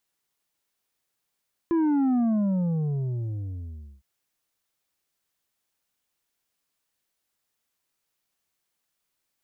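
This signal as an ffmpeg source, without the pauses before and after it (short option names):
-f lavfi -i "aevalsrc='0.0944*clip((2.31-t)/1.86,0,1)*tanh(2*sin(2*PI*340*2.31/log(65/340)*(exp(log(65/340)*t/2.31)-1)))/tanh(2)':d=2.31:s=44100"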